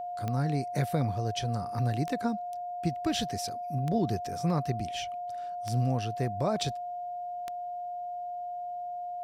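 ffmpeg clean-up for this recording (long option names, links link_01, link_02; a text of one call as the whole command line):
ffmpeg -i in.wav -af "adeclick=threshold=4,bandreject=frequency=710:width=30" out.wav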